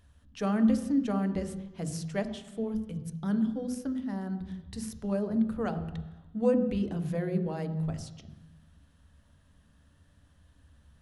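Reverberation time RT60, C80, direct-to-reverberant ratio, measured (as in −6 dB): 1.1 s, 13.0 dB, 8.0 dB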